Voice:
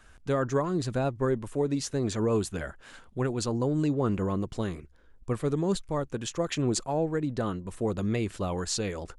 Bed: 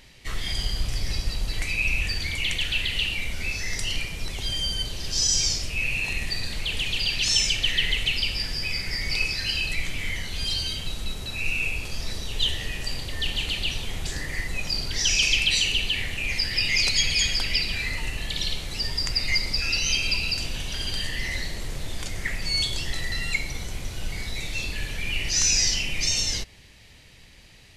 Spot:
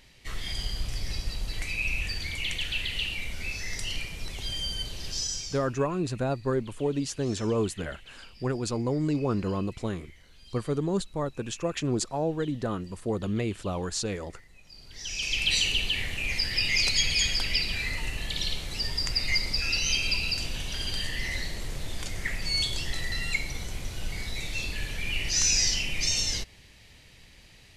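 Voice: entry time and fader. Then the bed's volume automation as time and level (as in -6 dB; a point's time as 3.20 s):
5.25 s, -0.5 dB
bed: 5.09 s -5 dB
5.91 s -25.5 dB
14.64 s -25.5 dB
15.51 s -2.5 dB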